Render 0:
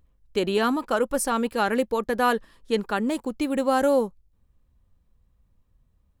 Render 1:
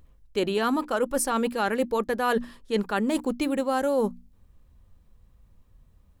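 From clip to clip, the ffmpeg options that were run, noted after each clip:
-af "bandreject=f=60:t=h:w=6,bandreject=f=120:t=h:w=6,bandreject=f=180:t=h:w=6,bandreject=f=240:t=h:w=6,bandreject=f=300:t=h:w=6,areverse,acompressor=threshold=-30dB:ratio=5,areverse,volume=7.5dB"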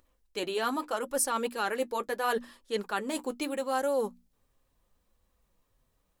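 -af "bass=f=250:g=-14,treble=f=4k:g=4,flanger=delay=3.4:depth=4.3:regen=-46:speed=0.77:shape=sinusoidal"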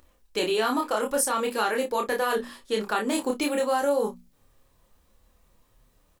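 -filter_complex "[0:a]acompressor=threshold=-31dB:ratio=6,asplit=2[a][b];[b]aecho=0:1:28|57:0.708|0.158[c];[a][c]amix=inputs=2:normalize=0,volume=8dB"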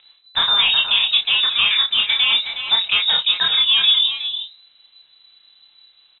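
-filter_complex "[0:a]lowpass=f=3.4k:t=q:w=0.5098,lowpass=f=3.4k:t=q:w=0.6013,lowpass=f=3.4k:t=q:w=0.9,lowpass=f=3.4k:t=q:w=2.563,afreqshift=-4000,asplit=2[a][b];[b]adelay=367.3,volume=-7dB,highshelf=f=4k:g=-8.27[c];[a][c]amix=inputs=2:normalize=0,volume=8.5dB"

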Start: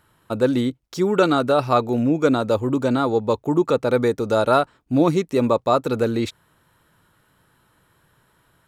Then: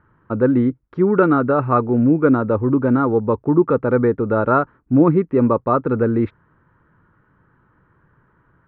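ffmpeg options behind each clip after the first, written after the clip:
-af "lowpass=f=1.6k:w=0.5412,lowpass=f=1.6k:w=1.3066,equalizer=f=690:t=o:w=0.88:g=-9,volume=5.5dB"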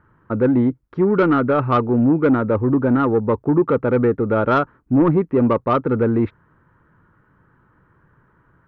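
-af "acontrast=82,volume=-6dB"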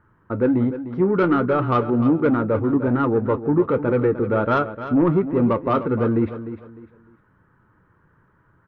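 -filter_complex "[0:a]flanger=delay=9.1:depth=2.4:regen=-58:speed=1.3:shape=sinusoidal,asplit=2[a][b];[b]aecho=0:1:302|604|906:0.251|0.0728|0.0211[c];[a][c]amix=inputs=2:normalize=0,volume=1.5dB"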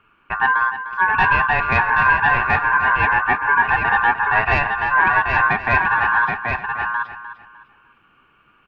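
-af "aeval=exprs='val(0)*sin(2*PI*1300*n/s)':c=same,aecho=1:1:779:0.596,volume=4dB"

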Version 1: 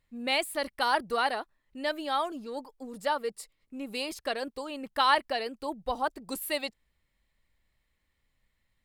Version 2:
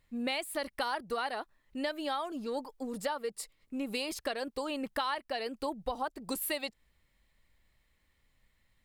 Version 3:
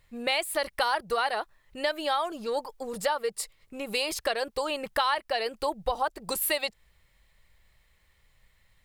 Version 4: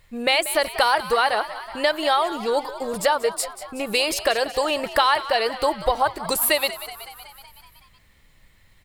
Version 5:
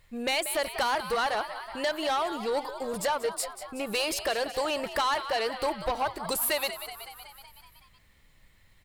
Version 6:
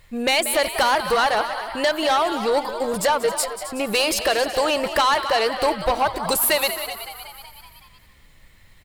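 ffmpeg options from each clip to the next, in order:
-af "acompressor=threshold=-35dB:ratio=8,volume=4dB"
-af "equalizer=f=260:w=2.9:g=-14,volume=7.5dB"
-filter_complex "[0:a]asplit=8[a][b][c][d][e][f][g][h];[b]adelay=187,afreqshift=66,volume=-14.5dB[i];[c]adelay=374,afreqshift=132,volume=-18.2dB[j];[d]adelay=561,afreqshift=198,volume=-22dB[k];[e]adelay=748,afreqshift=264,volume=-25.7dB[l];[f]adelay=935,afreqshift=330,volume=-29.5dB[m];[g]adelay=1122,afreqshift=396,volume=-33.2dB[n];[h]adelay=1309,afreqshift=462,volume=-37dB[o];[a][i][j][k][l][m][n][o]amix=inputs=8:normalize=0,volume=7.5dB"
-af "asoftclip=type=tanh:threshold=-17.5dB,volume=-4.5dB"
-af "aecho=1:1:267:0.211,volume=8.5dB"

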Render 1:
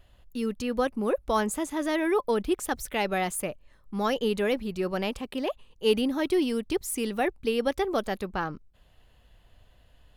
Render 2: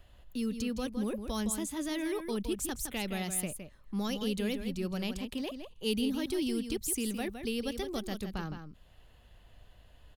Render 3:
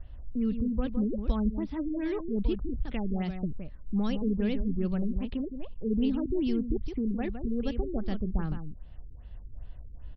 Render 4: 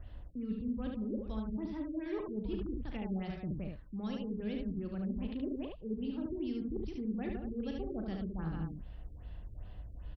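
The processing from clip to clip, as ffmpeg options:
-filter_complex "[0:a]acrossover=split=260|3000[a][b][c];[b]acompressor=threshold=-52dB:ratio=2[d];[a][d][c]amix=inputs=3:normalize=0,asplit=2[e][f];[f]adelay=163.3,volume=-8dB,highshelf=f=4k:g=-3.67[g];[e][g]amix=inputs=2:normalize=0"
-af "aemphasis=mode=reproduction:type=bsi,aeval=exprs='val(0)+0.000631*(sin(2*PI*60*n/s)+sin(2*PI*2*60*n/s)/2+sin(2*PI*3*60*n/s)/3+sin(2*PI*4*60*n/s)/4+sin(2*PI*5*60*n/s)/5)':c=same,afftfilt=real='re*lt(b*sr/1024,420*pow(6000/420,0.5+0.5*sin(2*PI*2.5*pts/sr)))':imag='im*lt(b*sr/1024,420*pow(6000/420,0.5+0.5*sin(2*PI*2.5*pts/sr)))':win_size=1024:overlap=0.75"
-af "highpass=f=54:p=1,areverse,acompressor=threshold=-37dB:ratio=12,areverse,aecho=1:1:37|73:0.355|0.668,volume=1dB"

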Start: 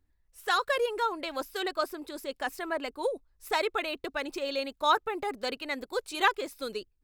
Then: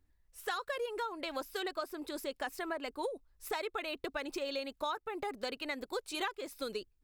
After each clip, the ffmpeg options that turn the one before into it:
-af "acompressor=threshold=-34dB:ratio=6"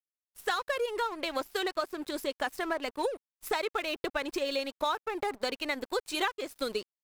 -af "aeval=exprs='sgn(val(0))*max(abs(val(0))-0.00237,0)':c=same,volume=7dB"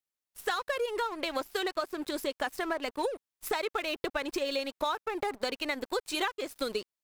-af "acompressor=threshold=-36dB:ratio=1.5,volume=3dB"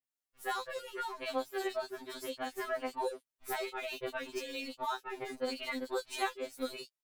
-filter_complex "[0:a]acrossover=split=3300[a][b];[b]adelay=40[c];[a][c]amix=inputs=2:normalize=0,afftfilt=real='re*2.45*eq(mod(b,6),0)':imag='im*2.45*eq(mod(b,6),0)':win_size=2048:overlap=0.75,volume=-2dB"

